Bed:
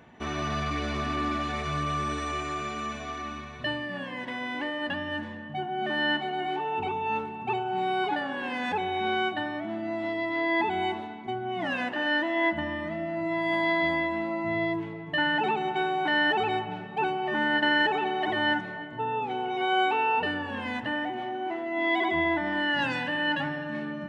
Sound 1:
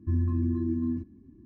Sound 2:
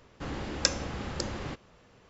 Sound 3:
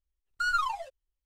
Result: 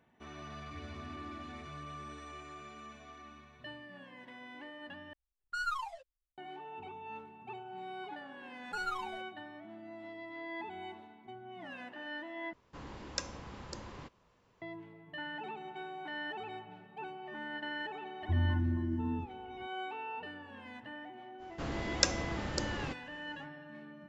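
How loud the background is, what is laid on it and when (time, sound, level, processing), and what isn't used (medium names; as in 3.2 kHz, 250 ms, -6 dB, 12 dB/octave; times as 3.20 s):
bed -16.5 dB
0.66 s: add 1 -16.5 dB + compression 2:1, threshold -38 dBFS
5.13 s: replace with 3 -8 dB + level-controlled noise filter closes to 2.1 kHz, open at -27 dBFS
8.33 s: add 3 -10 dB
12.53 s: replace with 2 -11.5 dB + peaking EQ 1 kHz +9 dB 0.22 oct
18.22 s: add 1 -3 dB + peaking EQ 300 Hz -4.5 dB 1.4 oct
21.38 s: add 2 -2 dB, fades 0.05 s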